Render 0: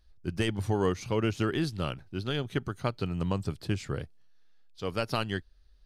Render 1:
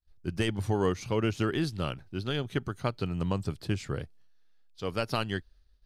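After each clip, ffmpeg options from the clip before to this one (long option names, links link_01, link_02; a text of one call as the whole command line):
ffmpeg -i in.wav -af "agate=range=-33dB:threshold=-53dB:ratio=3:detection=peak" out.wav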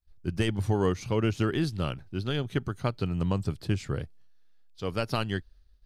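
ffmpeg -i in.wav -af "lowshelf=frequency=230:gain=4" out.wav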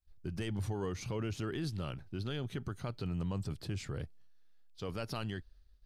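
ffmpeg -i in.wav -af "alimiter=level_in=2dB:limit=-24dB:level=0:latency=1:release=23,volume=-2dB,volume=-3dB" out.wav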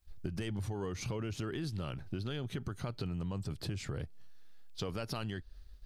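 ffmpeg -i in.wav -af "acompressor=threshold=-46dB:ratio=6,volume=10.5dB" out.wav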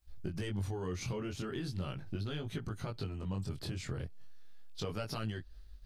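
ffmpeg -i in.wav -af "flanger=delay=18.5:depth=4.9:speed=0.38,volume=2.5dB" out.wav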